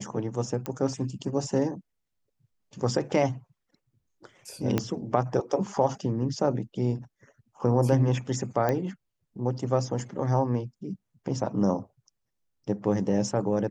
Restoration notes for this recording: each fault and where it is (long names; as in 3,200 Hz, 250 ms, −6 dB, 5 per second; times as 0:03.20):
0:00.66: click −17 dBFS
0:04.78: click −11 dBFS
0:08.69: click −14 dBFS